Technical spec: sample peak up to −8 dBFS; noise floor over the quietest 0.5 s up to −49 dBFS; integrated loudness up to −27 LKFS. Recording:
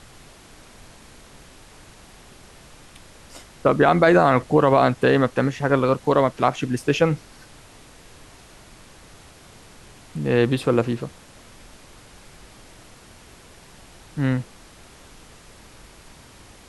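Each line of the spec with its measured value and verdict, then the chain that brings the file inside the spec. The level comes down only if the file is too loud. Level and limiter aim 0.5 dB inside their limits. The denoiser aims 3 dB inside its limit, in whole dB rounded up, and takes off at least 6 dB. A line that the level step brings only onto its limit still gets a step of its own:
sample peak −4.5 dBFS: out of spec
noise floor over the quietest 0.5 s −47 dBFS: out of spec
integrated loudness −20.0 LKFS: out of spec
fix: level −7.5 dB

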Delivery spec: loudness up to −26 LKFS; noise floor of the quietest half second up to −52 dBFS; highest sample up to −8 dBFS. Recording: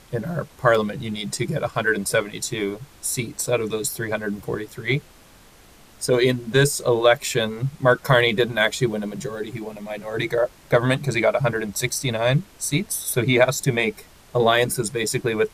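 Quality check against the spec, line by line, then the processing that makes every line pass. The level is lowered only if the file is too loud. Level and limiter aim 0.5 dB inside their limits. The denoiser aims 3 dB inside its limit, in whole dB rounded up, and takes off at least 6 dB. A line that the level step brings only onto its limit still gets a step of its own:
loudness −22.0 LKFS: out of spec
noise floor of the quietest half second −50 dBFS: out of spec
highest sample −3.5 dBFS: out of spec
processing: level −4.5 dB
brickwall limiter −8.5 dBFS

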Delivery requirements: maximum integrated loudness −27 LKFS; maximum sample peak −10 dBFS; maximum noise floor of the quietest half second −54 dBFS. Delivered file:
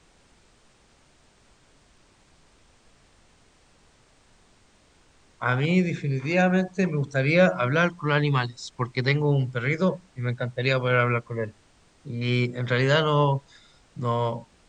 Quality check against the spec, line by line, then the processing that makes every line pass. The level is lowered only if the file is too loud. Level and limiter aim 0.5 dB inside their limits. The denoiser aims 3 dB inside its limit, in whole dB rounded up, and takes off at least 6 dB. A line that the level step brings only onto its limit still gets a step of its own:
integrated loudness −24.5 LKFS: out of spec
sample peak −6.0 dBFS: out of spec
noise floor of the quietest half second −59 dBFS: in spec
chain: level −3 dB
brickwall limiter −10.5 dBFS

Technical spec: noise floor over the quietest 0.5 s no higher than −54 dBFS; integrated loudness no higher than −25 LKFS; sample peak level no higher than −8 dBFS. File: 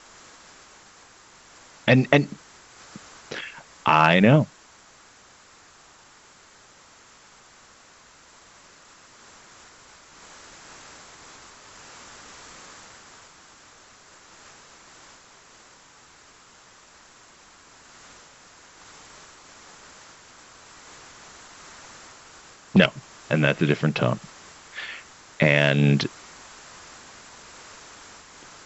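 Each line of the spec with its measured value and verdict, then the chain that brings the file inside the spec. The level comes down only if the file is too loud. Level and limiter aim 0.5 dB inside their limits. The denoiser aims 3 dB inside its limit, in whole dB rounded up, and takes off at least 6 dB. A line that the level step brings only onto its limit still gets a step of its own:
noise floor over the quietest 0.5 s −53 dBFS: out of spec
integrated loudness −21.5 LKFS: out of spec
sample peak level −2.5 dBFS: out of spec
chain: level −4 dB
brickwall limiter −8.5 dBFS

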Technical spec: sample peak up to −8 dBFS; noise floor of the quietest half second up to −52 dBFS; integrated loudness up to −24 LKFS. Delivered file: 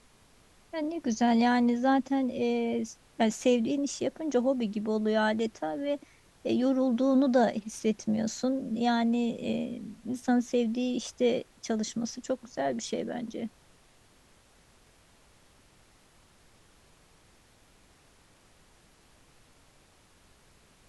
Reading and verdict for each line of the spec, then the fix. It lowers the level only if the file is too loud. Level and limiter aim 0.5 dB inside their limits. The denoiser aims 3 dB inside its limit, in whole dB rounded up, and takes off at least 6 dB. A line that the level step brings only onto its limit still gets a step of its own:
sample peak −14.0 dBFS: in spec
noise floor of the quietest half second −61 dBFS: in spec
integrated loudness −29.0 LKFS: in spec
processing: no processing needed

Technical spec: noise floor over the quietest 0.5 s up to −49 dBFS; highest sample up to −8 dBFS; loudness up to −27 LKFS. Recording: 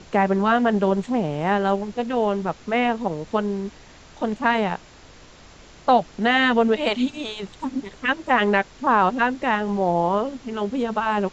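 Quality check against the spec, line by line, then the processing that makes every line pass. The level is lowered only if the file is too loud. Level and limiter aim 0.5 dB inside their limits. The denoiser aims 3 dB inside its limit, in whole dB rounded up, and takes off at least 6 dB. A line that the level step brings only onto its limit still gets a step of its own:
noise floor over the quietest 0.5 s −47 dBFS: out of spec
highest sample −5.5 dBFS: out of spec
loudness −22.0 LKFS: out of spec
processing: level −5.5 dB

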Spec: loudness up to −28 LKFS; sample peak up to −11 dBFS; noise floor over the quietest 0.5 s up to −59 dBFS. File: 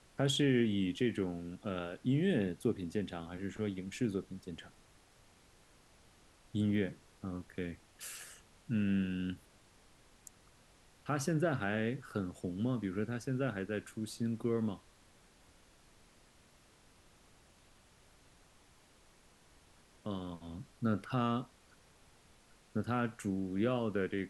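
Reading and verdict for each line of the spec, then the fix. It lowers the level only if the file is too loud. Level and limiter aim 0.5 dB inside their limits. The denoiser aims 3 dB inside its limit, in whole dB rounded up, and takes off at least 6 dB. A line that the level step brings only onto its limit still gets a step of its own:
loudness −36.5 LKFS: in spec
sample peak −19.0 dBFS: in spec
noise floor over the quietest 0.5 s −64 dBFS: in spec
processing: no processing needed

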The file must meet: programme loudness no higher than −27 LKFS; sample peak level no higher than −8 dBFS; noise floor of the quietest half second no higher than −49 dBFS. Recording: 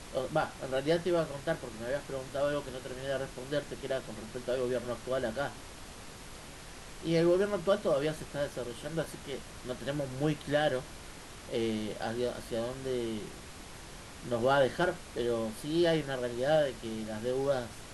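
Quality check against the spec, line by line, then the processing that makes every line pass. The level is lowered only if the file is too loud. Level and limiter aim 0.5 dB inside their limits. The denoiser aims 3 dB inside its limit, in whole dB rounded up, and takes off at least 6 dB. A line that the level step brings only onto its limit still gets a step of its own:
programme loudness −33.0 LKFS: in spec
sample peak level −16.0 dBFS: in spec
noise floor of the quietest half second −47 dBFS: out of spec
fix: broadband denoise 6 dB, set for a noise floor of −47 dBFS

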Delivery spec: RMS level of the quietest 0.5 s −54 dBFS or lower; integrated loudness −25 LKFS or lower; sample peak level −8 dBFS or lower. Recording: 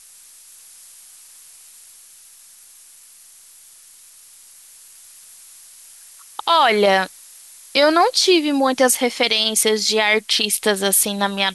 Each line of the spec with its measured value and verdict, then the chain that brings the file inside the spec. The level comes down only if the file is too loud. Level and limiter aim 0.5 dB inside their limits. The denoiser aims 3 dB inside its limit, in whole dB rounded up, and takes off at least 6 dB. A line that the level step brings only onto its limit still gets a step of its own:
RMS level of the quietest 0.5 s −46 dBFS: out of spec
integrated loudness −16.5 LKFS: out of spec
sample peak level −4.5 dBFS: out of spec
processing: level −9 dB

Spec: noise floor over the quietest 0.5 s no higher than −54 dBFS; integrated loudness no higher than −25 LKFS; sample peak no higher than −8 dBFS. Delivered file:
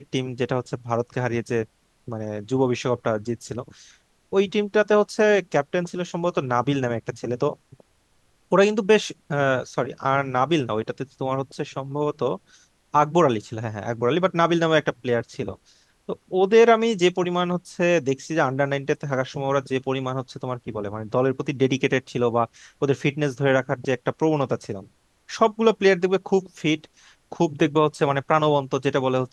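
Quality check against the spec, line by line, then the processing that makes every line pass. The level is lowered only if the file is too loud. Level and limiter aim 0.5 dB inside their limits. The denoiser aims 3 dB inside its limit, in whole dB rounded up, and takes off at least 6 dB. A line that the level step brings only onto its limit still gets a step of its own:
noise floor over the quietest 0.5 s −63 dBFS: in spec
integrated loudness −23.0 LKFS: out of spec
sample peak −3.5 dBFS: out of spec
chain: level −2.5 dB
brickwall limiter −8.5 dBFS

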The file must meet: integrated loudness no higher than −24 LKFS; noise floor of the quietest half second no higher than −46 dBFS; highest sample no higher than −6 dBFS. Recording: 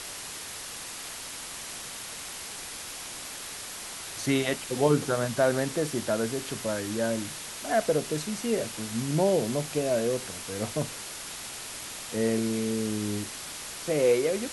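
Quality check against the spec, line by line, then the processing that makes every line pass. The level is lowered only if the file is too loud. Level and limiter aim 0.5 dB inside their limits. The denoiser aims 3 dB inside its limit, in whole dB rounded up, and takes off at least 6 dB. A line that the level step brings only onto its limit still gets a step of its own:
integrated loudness −29.5 LKFS: in spec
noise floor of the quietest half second −39 dBFS: out of spec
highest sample −10.0 dBFS: in spec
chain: broadband denoise 10 dB, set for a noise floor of −39 dBFS

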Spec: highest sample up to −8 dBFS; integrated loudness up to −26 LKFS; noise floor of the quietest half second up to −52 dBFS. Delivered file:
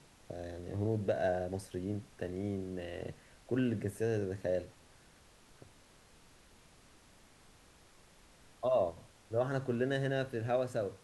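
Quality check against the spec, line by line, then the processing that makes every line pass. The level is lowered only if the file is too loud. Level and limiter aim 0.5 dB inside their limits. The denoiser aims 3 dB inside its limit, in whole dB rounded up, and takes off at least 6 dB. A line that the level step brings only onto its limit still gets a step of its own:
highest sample −20.5 dBFS: in spec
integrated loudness −36.0 LKFS: in spec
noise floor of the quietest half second −62 dBFS: in spec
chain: no processing needed

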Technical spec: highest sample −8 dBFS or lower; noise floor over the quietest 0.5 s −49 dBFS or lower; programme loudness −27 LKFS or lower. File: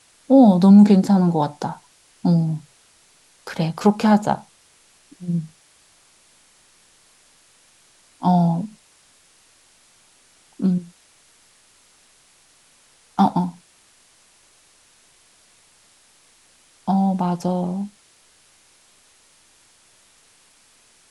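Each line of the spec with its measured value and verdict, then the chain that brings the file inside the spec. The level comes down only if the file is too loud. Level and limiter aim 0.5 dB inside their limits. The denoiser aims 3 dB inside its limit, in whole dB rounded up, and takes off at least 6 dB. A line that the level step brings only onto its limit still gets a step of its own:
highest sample −3.5 dBFS: out of spec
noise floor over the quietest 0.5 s −56 dBFS: in spec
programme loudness −18.5 LKFS: out of spec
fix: level −9 dB

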